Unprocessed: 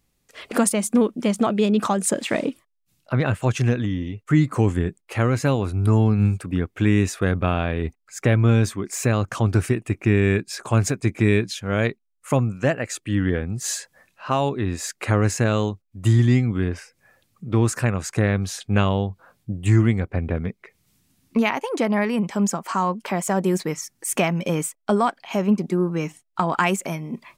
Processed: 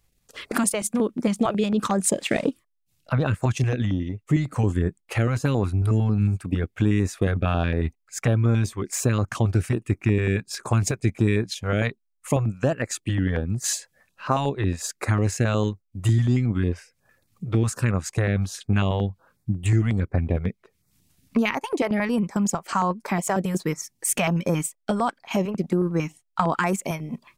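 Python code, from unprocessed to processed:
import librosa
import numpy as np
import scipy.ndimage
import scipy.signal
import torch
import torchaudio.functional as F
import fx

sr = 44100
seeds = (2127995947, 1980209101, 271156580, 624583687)

p1 = fx.low_shelf(x, sr, hz=69.0, db=4.5)
p2 = fx.over_compress(p1, sr, threshold_db=-22.0, ratio=-1.0)
p3 = p1 + F.gain(torch.from_numpy(p2), -1.5).numpy()
p4 = fx.transient(p3, sr, attack_db=3, sustain_db=-6)
p5 = fx.filter_held_notch(p4, sr, hz=11.0, low_hz=240.0, high_hz=3000.0)
y = F.gain(torch.from_numpy(p5), -6.0).numpy()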